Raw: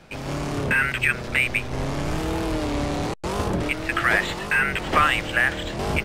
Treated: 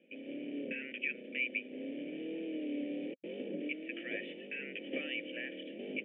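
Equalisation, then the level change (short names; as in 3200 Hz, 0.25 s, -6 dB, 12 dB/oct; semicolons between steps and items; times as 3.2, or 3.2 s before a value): vocal tract filter i; vowel filter e; brick-wall FIR high-pass 160 Hz; +12.5 dB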